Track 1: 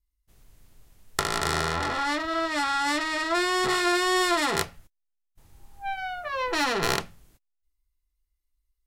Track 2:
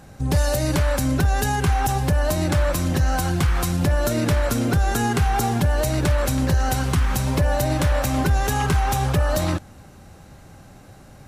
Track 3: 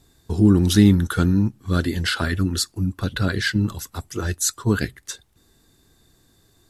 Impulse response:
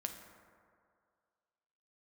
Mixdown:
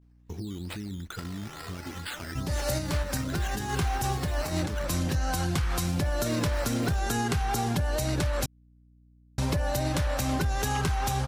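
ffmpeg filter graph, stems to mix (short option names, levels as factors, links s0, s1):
-filter_complex "[0:a]asplit=2[s0][s1];[s1]adelay=3,afreqshift=-2.7[s2];[s0][s2]amix=inputs=2:normalize=1,volume=0.335[s3];[1:a]adelay=2150,volume=0.75,asplit=3[s4][s5][s6];[s4]atrim=end=8.46,asetpts=PTS-STARTPTS,afade=t=out:st=8.456:d=0.004:c=hsin[s7];[s5]atrim=start=8.46:end=9.38,asetpts=PTS-STARTPTS,volume=0[s8];[s6]atrim=start=9.38,asetpts=PTS-STARTPTS,afade=t=in:d=0.004:c=hsin[s9];[s7][s8][s9]concat=n=3:v=0:a=1[s10];[2:a]agate=range=0.0224:threshold=0.00355:ratio=3:detection=peak,alimiter=limit=0.299:level=0:latency=1,volume=0.316,asplit=2[s11][s12];[s12]apad=whole_len=591954[s13];[s10][s13]sidechaincompress=threshold=0.01:ratio=4:attack=16:release=123[s14];[s3][s11]amix=inputs=2:normalize=0,acrusher=samples=10:mix=1:aa=0.000001:lfo=1:lforange=6:lforate=2.3,acompressor=threshold=0.0158:ratio=3,volume=1[s15];[s14][s15]amix=inputs=2:normalize=0,aeval=exprs='val(0)+0.00141*(sin(2*PI*60*n/s)+sin(2*PI*2*60*n/s)/2+sin(2*PI*3*60*n/s)/3+sin(2*PI*4*60*n/s)/4+sin(2*PI*5*60*n/s)/5)':c=same,equalizer=f=4800:t=o:w=1.4:g=4,acompressor=threshold=0.0631:ratio=6"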